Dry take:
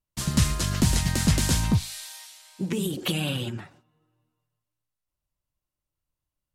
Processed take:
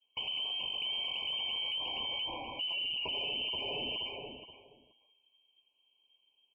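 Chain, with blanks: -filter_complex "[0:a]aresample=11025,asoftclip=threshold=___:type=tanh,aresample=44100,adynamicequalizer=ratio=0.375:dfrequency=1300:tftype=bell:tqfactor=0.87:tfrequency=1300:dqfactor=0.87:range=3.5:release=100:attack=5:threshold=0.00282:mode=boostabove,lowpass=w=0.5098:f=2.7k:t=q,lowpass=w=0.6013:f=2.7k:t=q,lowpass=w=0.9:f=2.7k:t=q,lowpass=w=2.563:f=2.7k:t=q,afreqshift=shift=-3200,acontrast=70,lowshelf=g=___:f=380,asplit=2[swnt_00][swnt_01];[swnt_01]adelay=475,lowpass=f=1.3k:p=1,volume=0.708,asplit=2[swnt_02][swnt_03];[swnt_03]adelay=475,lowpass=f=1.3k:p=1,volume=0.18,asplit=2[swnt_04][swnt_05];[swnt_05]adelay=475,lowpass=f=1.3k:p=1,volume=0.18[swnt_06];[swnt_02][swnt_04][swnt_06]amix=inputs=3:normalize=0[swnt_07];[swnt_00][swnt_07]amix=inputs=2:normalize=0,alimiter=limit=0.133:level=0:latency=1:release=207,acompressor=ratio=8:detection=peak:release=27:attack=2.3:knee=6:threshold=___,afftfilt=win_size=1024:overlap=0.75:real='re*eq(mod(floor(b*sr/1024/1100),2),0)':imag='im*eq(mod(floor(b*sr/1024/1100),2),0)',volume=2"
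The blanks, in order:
0.0891, -2, 0.00891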